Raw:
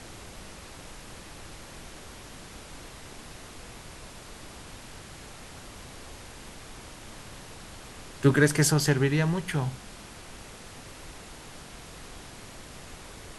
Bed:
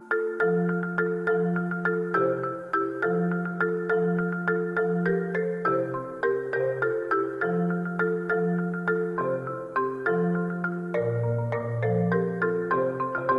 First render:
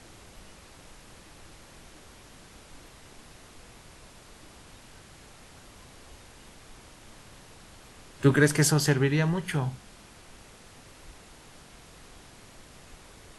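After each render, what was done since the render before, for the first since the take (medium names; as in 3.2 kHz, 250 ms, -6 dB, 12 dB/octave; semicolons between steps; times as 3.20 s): noise print and reduce 6 dB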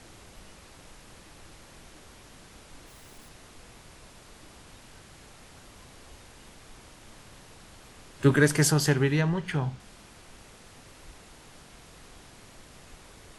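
2.88–3.29 s: zero-crossing glitches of -52.5 dBFS; 9.21–9.80 s: distance through air 67 m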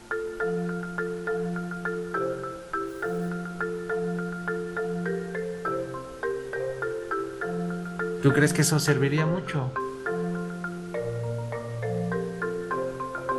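add bed -4.5 dB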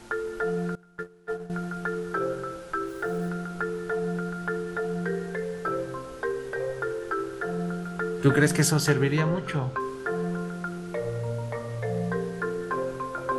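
0.75–1.50 s: gate -28 dBFS, range -22 dB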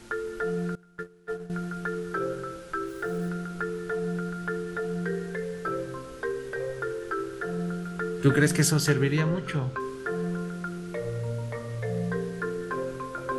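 peaking EQ 800 Hz -6.5 dB 0.99 oct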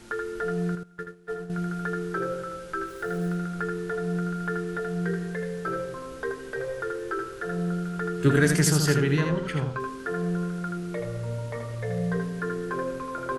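delay 80 ms -5.5 dB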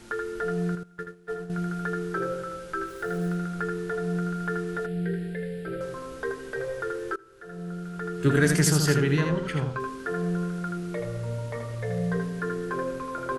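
4.86–5.81 s: static phaser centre 2.7 kHz, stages 4; 7.16–8.51 s: fade in, from -24 dB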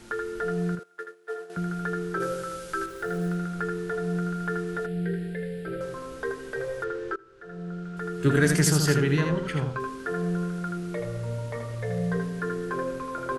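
0.79–1.57 s: high-pass 370 Hz 24 dB/octave; 2.20–2.86 s: treble shelf 3.6 kHz +10 dB; 6.84–7.97 s: distance through air 89 m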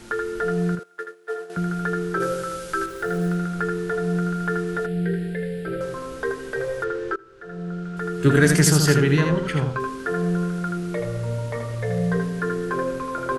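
trim +5 dB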